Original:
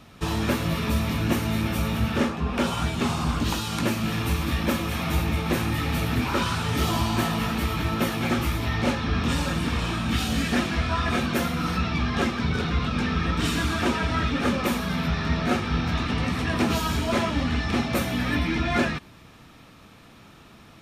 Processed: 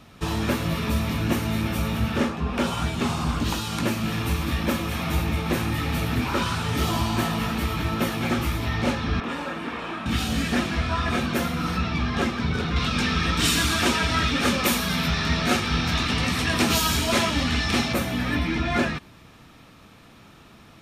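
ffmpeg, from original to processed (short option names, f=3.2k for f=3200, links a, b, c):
-filter_complex "[0:a]asettb=1/sr,asplit=3[a][b][c];[a]atrim=end=9.204[d];[b]atrim=start=9.2:end=10.06,asetpts=PTS-STARTPTS,afade=t=in:d=0.004:c=qsin,afade=t=out:st=0.856:d=0.004:c=qsin,acrossover=split=240 2800:gain=0.0794 1 0.2[e][f][g];[e][f][g]amix=inputs=3:normalize=0[h];[c]atrim=start=10.056[i];[d][h]acrossfade=d=0.004:c1=hsin:c2=qsin[j];[j][i]acrossfade=d=0.004:c1=qsin:c2=hsin,asettb=1/sr,asplit=3[k][l][m];[k]atrim=end=12.764[n];[l]atrim=start=12.76:end=17.93,asetpts=PTS-STARTPTS,afade=t=in:d=0.004:c=qsin,afade=t=out:st=5.166:d=0.004:c=qsin,highshelf=f=2.4k:g=11.5[o];[m]atrim=start=17.926[p];[n][o]acrossfade=d=0.004:c1=hsin:c2=qsin[q];[q][p]acrossfade=d=0.004:c1=qsin:c2=hsin"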